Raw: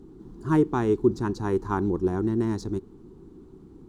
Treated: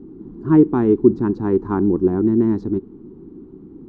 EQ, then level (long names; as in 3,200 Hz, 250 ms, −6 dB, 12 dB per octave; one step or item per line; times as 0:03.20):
low-pass filter 2,300 Hz 12 dB per octave
parametric band 260 Hz +11 dB 1.6 octaves
0.0 dB